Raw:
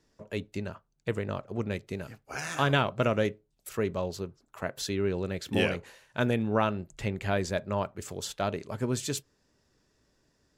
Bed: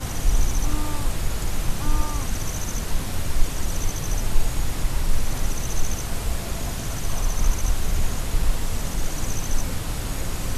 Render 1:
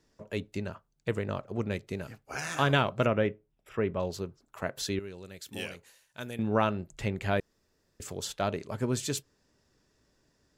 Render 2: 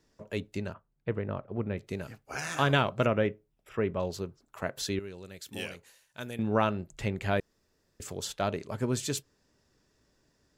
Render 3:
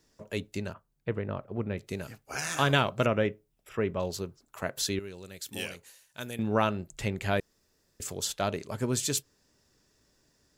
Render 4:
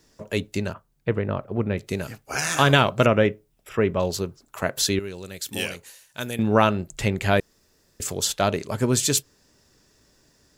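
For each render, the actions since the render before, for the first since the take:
3.06–4.00 s: Savitzky-Golay filter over 25 samples; 4.99–6.39 s: pre-emphasis filter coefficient 0.8; 7.40–8.00 s: room tone
0.73–1.78 s: distance through air 470 m
treble shelf 4.4 kHz +8 dB
trim +8 dB; peak limiter -3 dBFS, peak gain reduction 1.5 dB

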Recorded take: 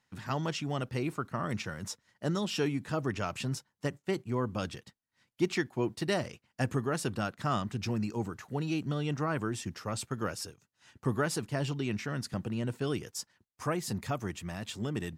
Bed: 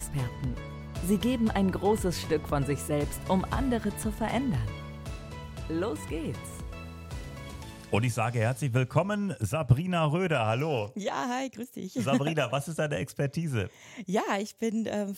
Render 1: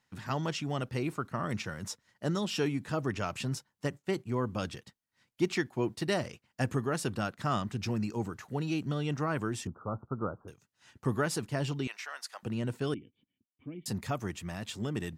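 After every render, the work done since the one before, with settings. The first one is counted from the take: 9.67–10.48 s: steep low-pass 1.4 kHz 96 dB/octave; 11.87–12.43 s: high-pass 730 Hz 24 dB/octave; 12.94–13.86 s: cascade formant filter i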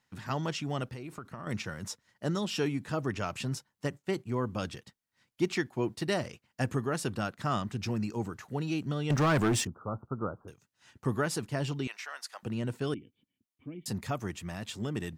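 0.86–1.47 s: compression 12:1, threshold -37 dBFS; 9.10–9.65 s: waveshaping leveller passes 3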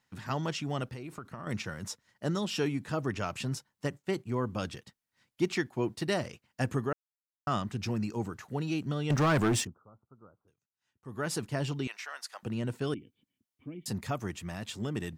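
6.93–7.47 s: mute; 9.59–11.30 s: dip -22 dB, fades 0.33 s quadratic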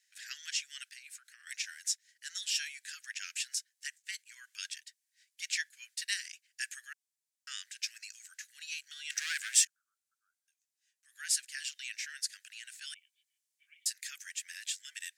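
Chebyshev high-pass 1.6 kHz, order 6; peaking EQ 7.8 kHz +10 dB 1.5 oct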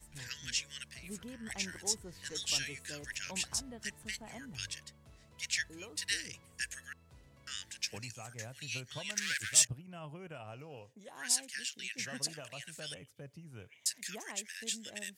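add bed -20.5 dB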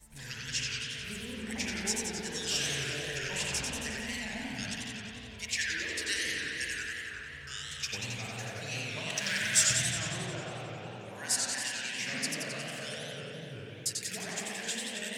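spring tank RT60 2.9 s, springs 50 ms, chirp 60 ms, DRR -2.5 dB; modulated delay 90 ms, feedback 71%, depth 178 cents, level -4 dB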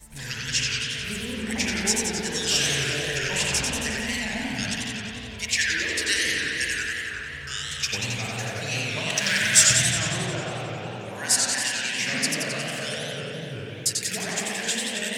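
trim +9 dB

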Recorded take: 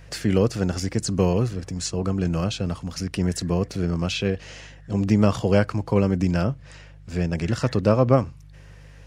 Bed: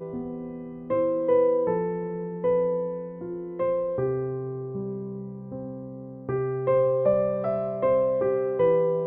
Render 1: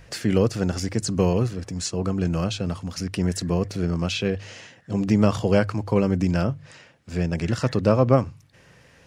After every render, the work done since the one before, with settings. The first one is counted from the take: de-hum 50 Hz, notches 3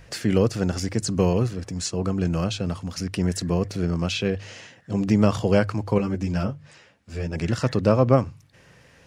5.98–7.36 s: three-phase chorus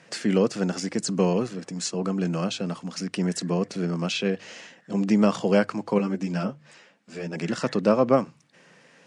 elliptic band-pass 180–8900 Hz, stop band 40 dB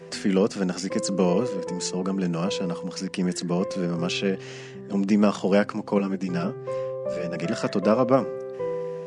add bed -8 dB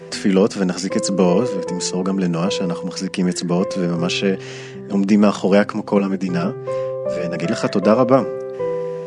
trim +6.5 dB; peak limiter -2 dBFS, peak gain reduction 1.5 dB

